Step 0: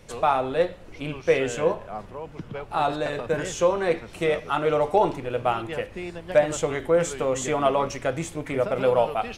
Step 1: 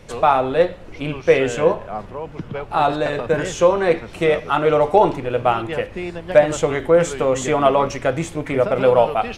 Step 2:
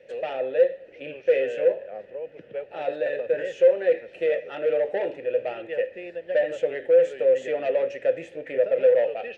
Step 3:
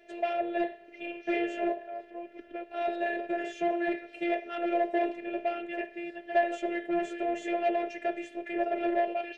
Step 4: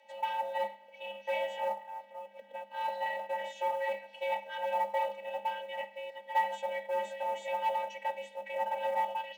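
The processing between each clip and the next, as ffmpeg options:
-af "highshelf=f=5.9k:g=-7,volume=6.5dB"
-filter_complex "[0:a]asoftclip=type=tanh:threshold=-12dB,asplit=3[a][b][c];[a]bandpass=f=530:t=q:w=8,volume=0dB[d];[b]bandpass=f=1.84k:t=q:w=8,volume=-6dB[e];[c]bandpass=f=2.48k:t=q:w=8,volume=-9dB[f];[d][e][f]amix=inputs=3:normalize=0,volume=3dB"
-af "afftfilt=real='hypot(re,im)*cos(PI*b)':imag='0':win_size=512:overlap=0.75,volume=3dB"
-af "afreqshift=200,acrusher=bits=8:mode=log:mix=0:aa=0.000001,volume=-3.5dB"

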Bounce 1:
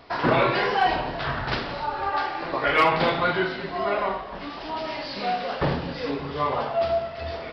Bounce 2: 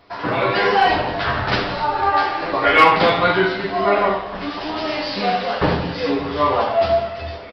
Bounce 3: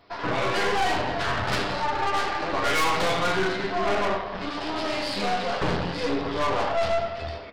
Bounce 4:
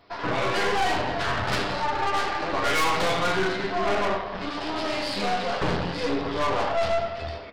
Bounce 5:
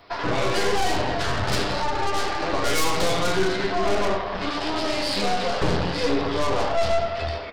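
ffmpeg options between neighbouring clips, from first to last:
-filter_complex "[0:a]dynaudnorm=f=110:g=9:m=11dB,asplit=2[a][b];[b]aecho=0:1:10|75:0.708|0.282[c];[a][c]amix=inputs=2:normalize=0,volume=-4dB"
-af "aeval=exprs='(tanh(11.2*val(0)+0.7)-tanh(0.7))/11.2':c=same,bandreject=f=72.25:t=h:w=4,bandreject=f=144.5:t=h:w=4,bandreject=f=216.75:t=h:w=4,bandreject=f=289:t=h:w=4,bandreject=f=361.25:t=h:w=4,bandreject=f=433.5:t=h:w=4,bandreject=f=505.75:t=h:w=4,bandreject=f=578:t=h:w=4,bandreject=f=650.25:t=h:w=4,bandreject=f=722.5:t=h:w=4,bandreject=f=794.75:t=h:w=4,bandreject=f=867:t=h:w=4,bandreject=f=939.25:t=h:w=4,bandreject=f=1.0115k:t=h:w=4,bandreject=f=1.08375k:t=h:w=4,bandreject=f=1.156k:t=h:w=4,bandreject=f=1.22825k:t=h:w=4,bandreject=f=1.3005k:t=h:w=4,bandreject=f=1.37275k:t=h:w=4,bandreject=f=1.445k:t=h:w=4,bandreject=f=1.51725k:t=h:w=4,bandreject=f=1.5895k:t=h:w=4,bandreject=f=1.66175k:t=h:w=4,bandreject=f=1.734k:t=h:w=4,bandreject=f=1.80625k:t=h:w=4,bandreject=f=1.8785k:t=h:w=4,bandreject=f=1.95075k:t=h:w=4,bandreject=f=2.023k:t=h:w=4,bandreject=f=2.09525k:t=h:w=4,bandreject=f=2.1675k:t=h:w=4,bandreject=f=2.23975k:t=h:w=4,bandreject=f=2.312k:t=h:w=4,bandreject=f=2.38425k:t=h:w=4,bandreject=f=2.4565k:t=h:w=4,bandreject=f=2.52875k:t=h:w=4,bandreject=f=2.601k:t=h:w=4,bandreject=f=2.67325k:t=h:w=4,bandreject=f=2.7455k:t=h:w=4,bandreject=f=2.81775k:t=h:w=4,bandreject=f=2.89k:t=h:w=4"
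-af anull
-filter_complex "[0:a]equalizer=f=200:w=0.68:g=-4.5,acrossover=split=530|4300[a][b][c];[b]alimiter=level_in=4dB:limit=-24dB:level=0:latency=1:release=175,volume=-4dB[d];[a][d][c]amix=inputs=3:normalize=0,volume=7dB"

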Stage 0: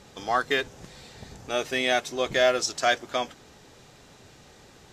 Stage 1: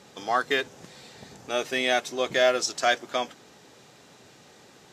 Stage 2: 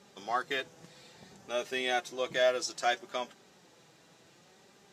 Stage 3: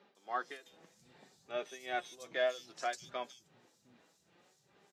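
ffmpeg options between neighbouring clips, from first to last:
-af "highpass=150"
-af "flanger=delay=5:depth=1.2:regen=49:speed=0.62:shape=sinusoidal,volume=-3.5dB"
-filter_complex "[0:a]tremolo=f=2.5:d=0.86,acrossover=split=190|4100[a][b][c];[c]adelay=150[d];[a]adelay=710[e];[e][b][d]amix=inputs=3:normalize=0,volume=-4dB"

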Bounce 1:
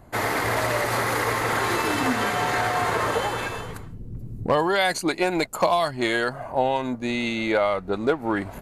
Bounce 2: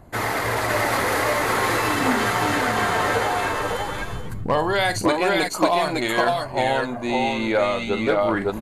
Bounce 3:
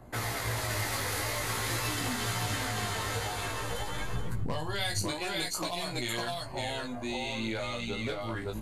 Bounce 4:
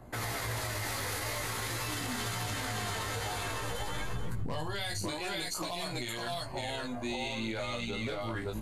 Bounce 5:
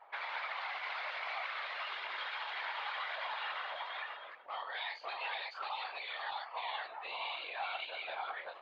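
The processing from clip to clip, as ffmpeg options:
-filter_complex "[0:a]aphaser=in_gain=1:out_gain=1:delay=4.2:decay=0.23:speed=0.47:type=triangular,asplit=2[a][b];[b]aecho=0:1:45|554|564:0.282|0.668|0.473[c];[a][c]amix=inputs=2:normalize=0"
-filter_complex "[0:a]flanger=delay=16.5:depth=3.4:speed=0.5,acrossover=split=140|3000[a][b][c];[b]acompressor=threshold=-37dB:ratio=4[d];[a][d][c]amix=inputs=3:normalize=0"
-af "alimiter=level_in=2dB:limit=-24dB:level=0:latency=1:release=40,volume=-2dB"
-af "highpass=f=520:t=q:w=0.5412,highpass=f=520:t=q:w=1.307,lowpass=f=3.5k:t=q:w=0.5176,lowpass=f=3.5k:t=q:w=0.7071,lowpass=f=3.5k:t=q:w=1.932,afreqshift=170,afftfilt=real='hypot(re,im)*cos(2*PI*random(0))':imag='hypot(re,im)*sin(2*PI*random(1))':win_size=512:overlap=0.75,volume=4.5dB"

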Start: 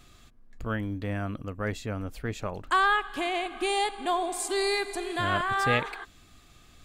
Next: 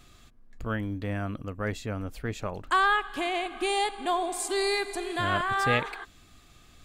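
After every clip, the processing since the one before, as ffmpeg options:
-af anull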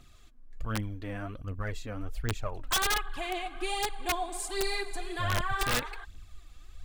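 -af "aphaser=in_gain=1:out_gain=1:delay=4.2:decay=0.56:speed=1.3:type=triangular,aeval=exprs='(mod(5.62*val(0)+1,2)-1)/5.62':c=same,asubboost=boost=4.5:cutoff=95,volume=-6dB"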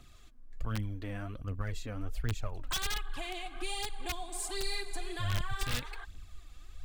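-filter_complex "[0:a]acrossover=split=200|2800[a][b][c];[b]acompressor=threshold=-41dB:ratio=6[d];[c]asoftclip=type=tanh:threshold=-28.5dB[e];[a][d][e]amix=inputs=3:normalize=0"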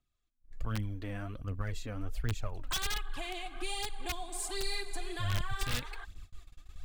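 -af "agate=range=-27dB:threshold=-45dB:ratio=16:detection=peak"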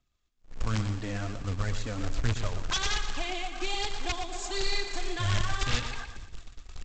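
-af "aresample=16000,acrusher=bits=3:mode=log:mix=0:aa=0.000001,aresample=44100,aecho=1:1:118|236|354|472|590:0.335|0.141|0.0591|0.0248|0.0104,volume=5dB"

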